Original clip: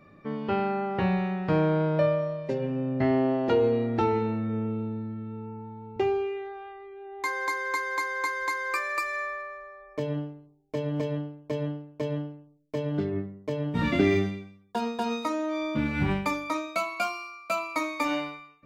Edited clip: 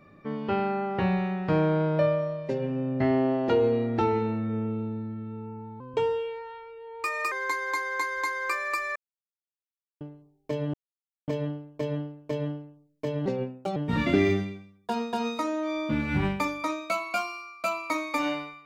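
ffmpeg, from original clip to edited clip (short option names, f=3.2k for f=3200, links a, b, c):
-filter_complex "[0:a]asplit=8[a][b][c][d][e][f][g][h];[a]atrim=end=5.804[i];[b]atrim=start=5.8:end=7.56,asetpts=PTS-STARTPTS,asetrate=51156,aresample=44100,atrim=end_sample=66910,asetpts=PTS-STARTPTS[j];[c]atrim=start=7.556:end=9.2,asetpts=PTS-STARTPTS,afade=t=out:st=1.64:d=0.004:c=hsin[k];[d]atrim=start=9.2:end=10.25,asetpts=PTS-STARTPTS,volume=0[l];[e]atrim=start=10.25:end=10.98,asetpts=PTS-STARTPTS,afade=t=in:d=0.004:c=hsin,afade=t=out:st=0.726:d=0.004:c=hsin,apad=pad_dur=0.54[m];[f]atrim=start=10.98:end=12.964,asetpts=PTS-STARTPTS,afade=t=in:d=0.004:c=hsin[n];[g]atrim=start=12.96:end=13.62,asetpts=PTS-STARTPTS,asetrate=57771,aresample=44100,atrim=end_sample=22218,asetpts=PTS-STARTPTS[o];[h]atrim=start=13.616[p];[i][j]acrossfade=d=0.004:c1=hsin:c2=hsin[q];[k][l][m][n]concat=n=4:v=0:a=1[r];[q][r]acrossfade=d=0.004:c1=hsin:c2=hsin[s];[s][o]acrossfade=d=0.004:c1=hsin:c2=hsin[t];[t][p]acrossfade=d=0.004:c1=hsin:c2=hsin"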